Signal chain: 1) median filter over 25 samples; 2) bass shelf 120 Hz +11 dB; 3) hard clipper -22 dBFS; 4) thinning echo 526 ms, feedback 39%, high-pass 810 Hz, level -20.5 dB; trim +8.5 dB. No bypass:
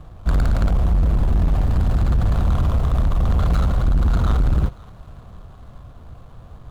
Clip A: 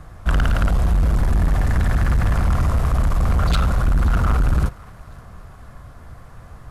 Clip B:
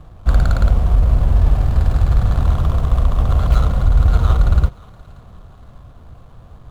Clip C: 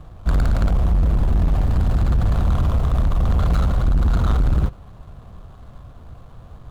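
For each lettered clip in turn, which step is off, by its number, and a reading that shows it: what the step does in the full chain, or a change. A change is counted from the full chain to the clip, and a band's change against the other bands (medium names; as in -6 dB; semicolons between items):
1, 2 kHz band +7.5 dB; 3, distortion -9 dB; 4, echo-to-direct -21.5 dB to none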